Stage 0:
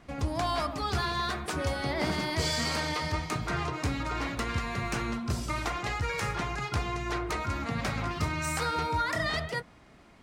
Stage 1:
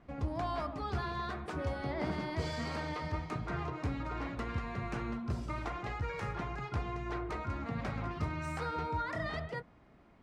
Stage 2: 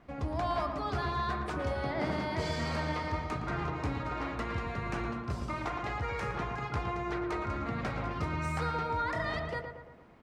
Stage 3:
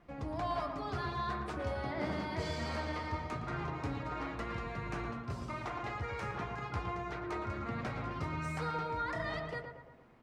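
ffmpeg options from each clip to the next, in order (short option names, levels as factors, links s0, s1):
-af "lowpass=f=1300:p=1,volume=0.596"
-filter_complex "[0:a]lowshelf=f=330:g=-4.5,asplit=2[s0][s1];[s1]adelay=114,lowpass=f=2100:p=1,volume=0.531,asplit=2[s2][s3];[s3]adelay=114,lowpass=f=2100:p=1,volume=0.54,asplit=2[s4][s5];[s5]adelay=114,lowpass=f=2100:p=1,volume=0.54,asplit=2[s6][s7];[s7]adelay=114,lowpass=f=2100:p=1,volume=0.54,asplit=2[s8][s9];[s9]adelay=114,lowpass=f=2100:p=1,volume=0.54,asplit=2[s10][s11];[s11]adelay=114,lowpass=f=2100:p=1,volume=0.54,asplit=2[s12][s13];[s13]adelay=114,lowpass=f=2100:p=1,volume=0.54[s14];[s0][s2][s4][s6][s8][s10][s12][s14]amix=inputs=8:normalize=0,volume=1.58"
-af "flanger=delay=5.7:depth=5:regen=-48:speed=0.22:shape=triangular"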